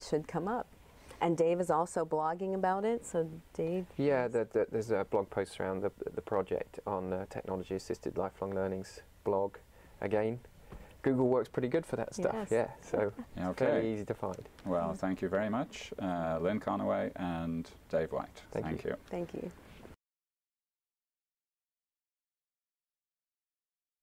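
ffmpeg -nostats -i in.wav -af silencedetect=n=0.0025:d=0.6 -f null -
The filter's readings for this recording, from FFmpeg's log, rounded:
silence_start: 19.94
silence_end: 24.02 | silence_duration: 4.08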